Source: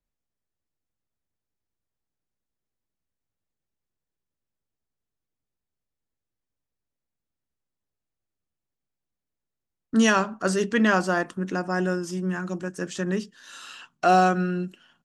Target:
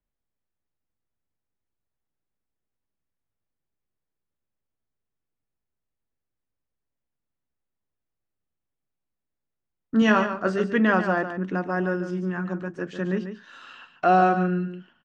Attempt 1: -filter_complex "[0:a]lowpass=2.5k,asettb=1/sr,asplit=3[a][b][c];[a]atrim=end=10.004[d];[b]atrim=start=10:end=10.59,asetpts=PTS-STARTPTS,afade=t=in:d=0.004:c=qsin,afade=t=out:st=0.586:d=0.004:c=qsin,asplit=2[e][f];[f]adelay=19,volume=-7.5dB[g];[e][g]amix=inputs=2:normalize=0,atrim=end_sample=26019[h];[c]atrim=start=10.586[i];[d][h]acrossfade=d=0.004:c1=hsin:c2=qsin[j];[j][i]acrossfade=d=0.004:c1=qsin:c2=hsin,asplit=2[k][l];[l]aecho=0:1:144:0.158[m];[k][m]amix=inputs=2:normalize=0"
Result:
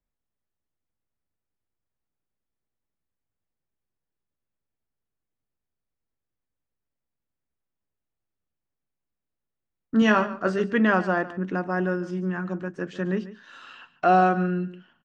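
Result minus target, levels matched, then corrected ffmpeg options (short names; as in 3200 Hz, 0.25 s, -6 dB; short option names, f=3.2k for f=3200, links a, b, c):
echo-to-direct -6.5 dB
-filter_complex "[0:a]lowpass=2.5k,asettb=1/sr,asplit=3[a][b][c];[a]atrim=end=10.004[d];[b]atrim=start=10:end=10.59,asetpts=PTS-STARTPTS,afade=t=in:d=0.004:c=qsin,afade=t=out:st=0.586:d=0.004:c=qsin,asplit=2[e][f];[f]adelay=19,volume=-7.5dB[g];[e][g]amix=inputs=2:normalize=0,atrim=end_sample=26019[h];[c]atrim=start=10.586[i];[d][h]acrossfade=d=0.004:c1=hsin:c2=qsin[j];[j][i]acrossfade=d=0.004:c1=qsin:c2=hsin,asplit=2[k][l];[l]aecho=0:1:144:0.335[m];[k][m]amix=inputs=2:normalize=0"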